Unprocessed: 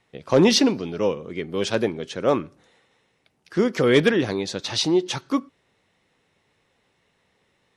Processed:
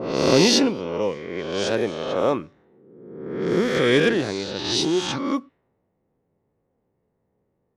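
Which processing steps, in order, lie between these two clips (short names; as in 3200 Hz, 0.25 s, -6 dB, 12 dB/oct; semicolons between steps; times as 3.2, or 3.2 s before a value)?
spectral swells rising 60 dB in 1.33 s; low-pass opened by the level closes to 560 Hz, open at -15 dBFS; gain -3.5 dB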